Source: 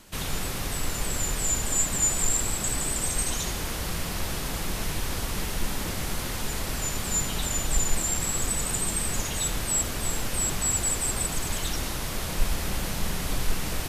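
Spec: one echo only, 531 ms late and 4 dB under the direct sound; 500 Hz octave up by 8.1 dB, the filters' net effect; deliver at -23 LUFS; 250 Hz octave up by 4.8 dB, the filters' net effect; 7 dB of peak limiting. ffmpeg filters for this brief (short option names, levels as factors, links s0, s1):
-af "equalizer=f=250:t=o:g=4,equalizer=f=500:t=o:g=9,alimiter=limit=0.141:level=0:latency=1,aecho=1:1:531:0.631,volume=1.41"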